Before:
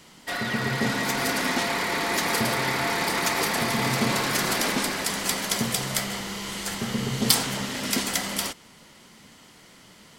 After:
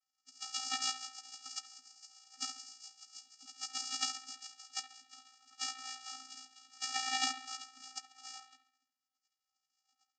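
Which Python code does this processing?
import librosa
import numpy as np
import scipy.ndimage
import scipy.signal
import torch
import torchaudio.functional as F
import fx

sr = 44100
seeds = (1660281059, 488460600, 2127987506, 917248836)

y = fx.lower_of_two(x, sr, delay_ms=0.34)
y = fx.echo_heads(y, sr, ms=107, heads='first and third', feedback_pct=58, wet_db=-23.0)
y = fx.rotary_switch(y, sr, hz=7.0, then_hz=0.8, switch_at_s=4.58)
y = fx.spec_gate(y, sr, threshold_db=-30, keep='weak')
y = 10.0 ** (-35.0 / 20.0) * (np.abs((y / 10.0 ** (-35.0 / 20.0) + 3.0) % 4.0 - 2.0) - 1.0)
y = fx.high_shelf(y, sr, hz=5800.0, db=11.5)
y = y * np.sin(2.0 * np.pi * 29.0 * np.arange(len(y)) / sr)
y = fx.low_shelf(y, sr, hz=340.0, db=-3.0)
y = fx.echo_wet_lowpass(y, sr, ms=69, feedback_pct=61, hz=3800.0, wet_db=-7.5)
y = fx.vocoder(y, sr, bands=8, carrier='square', carrier_hz=260.0)
y = fx.spectral_expand(y, sr, expansion=1.5)
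y = y * librosa.db_to_amplitude(10.0)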